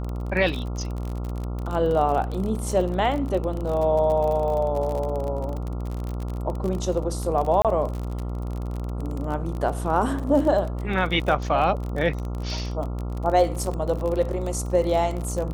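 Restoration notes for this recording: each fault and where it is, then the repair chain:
mains buzz 60 Hz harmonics 23 −29 dBFS
surface crackle 37 per second −28 dBFS
0:07.62–0:07.65: drop-out 27 ms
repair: click removal
hum removal 60 Hz, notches 23
repair the gap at 0:07.62, 27 ms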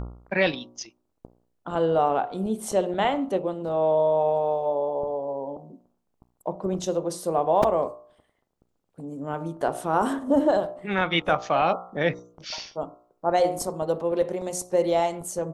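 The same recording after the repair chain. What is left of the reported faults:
none of them is left

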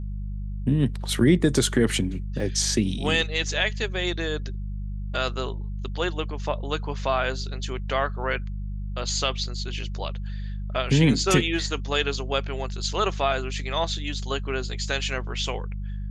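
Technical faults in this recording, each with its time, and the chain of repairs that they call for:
mains hum 50 Hz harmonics 4 −31 dBFS
0:02.40: drop-out 2.2 ms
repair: hum removal 50 Hz, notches 4
repair the gap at 0:02.40, 2.2 ms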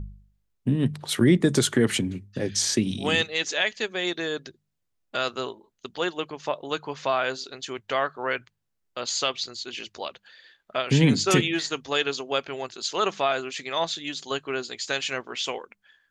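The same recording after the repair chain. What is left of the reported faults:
none of them is left

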